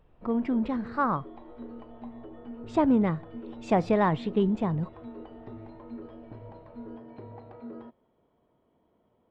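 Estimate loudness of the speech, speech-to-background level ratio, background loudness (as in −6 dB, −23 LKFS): −27.5 LKFS, 17.5 dB, −45.0 LKFS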